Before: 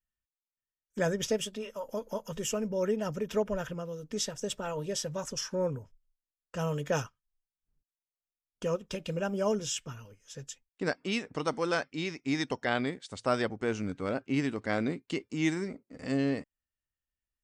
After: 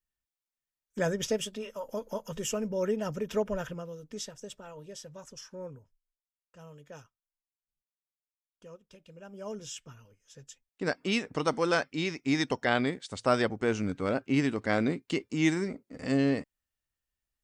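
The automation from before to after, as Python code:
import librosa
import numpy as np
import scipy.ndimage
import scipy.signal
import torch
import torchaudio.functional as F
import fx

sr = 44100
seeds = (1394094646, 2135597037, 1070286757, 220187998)

y = fx.gain(x, sr, db=fx.line((3.63, 0.0), (4.66, -11.0), (5.73, -11.0), (6.56, -18.0), (9.14, -18.0), (9.62, -7.5), (10.42, -7.5), (11.02, 3.0)))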